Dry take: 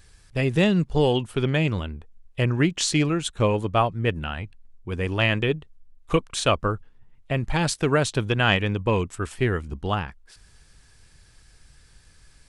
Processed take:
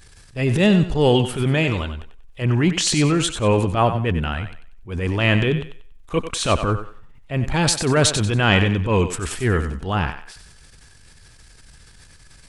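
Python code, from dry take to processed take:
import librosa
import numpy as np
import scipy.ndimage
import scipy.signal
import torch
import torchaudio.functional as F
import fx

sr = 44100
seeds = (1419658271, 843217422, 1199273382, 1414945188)

y = fx.peak_eq(x, sr, hz=160.0, db=-7.0, octaves=2.1, at=(1.57, 2.42))
y = fx.transient(y, sr, attack_db=-10, sustain_db=7)
y = fx.echo_thinned(y, sr, ms=94, feedback_pct=31, hz=370.0, wet_db=-9)
y = y * 10.0 ** (5.0 / 20.0)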